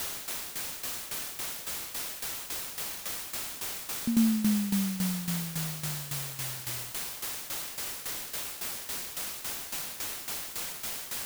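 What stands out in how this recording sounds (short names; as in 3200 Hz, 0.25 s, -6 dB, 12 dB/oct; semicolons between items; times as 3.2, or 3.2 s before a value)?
a quantiser's noise floor 6-bit, dither triangular; tremolo saw down 3.6 Hz, depth 75%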